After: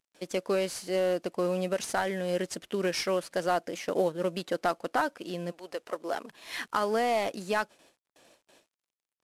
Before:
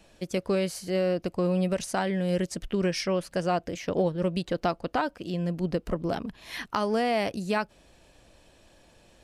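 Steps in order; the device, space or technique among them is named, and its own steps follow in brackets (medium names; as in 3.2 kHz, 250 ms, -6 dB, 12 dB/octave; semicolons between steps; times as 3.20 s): 5.50–6.29 s: high-pass 800 Hz -> 340 Hz 12 dB/octave; gate with hold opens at -46 dBFS; dynamic bell 1.4 kHz, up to +3 dB, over -45 dBFS, Q 3; early wireless headset (high-pass 290 Hz 12 dB/octave; CVSD coder 64 kbps)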